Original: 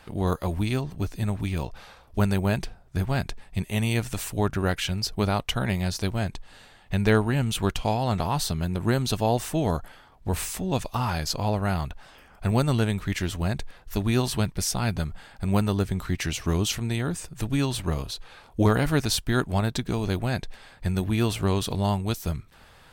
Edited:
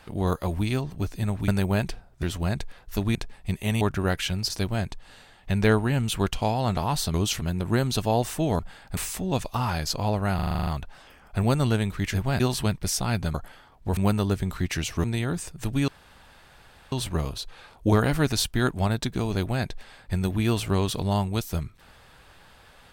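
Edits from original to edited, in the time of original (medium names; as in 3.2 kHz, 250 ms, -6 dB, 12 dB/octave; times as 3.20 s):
1.48–2.22 s: delete
2.97–3.23 s: swap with 13.22–14.14 s
3.89–4.40 s: delete
5.09–5.93 s: delete
9.74–10.37 s: swap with 15.08–15.46 s
11.75 s: stutter 0.04 s, 9 plays
16.53–16.81 s: move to 8.57 s
17.65 s: insert room tone 1.04 s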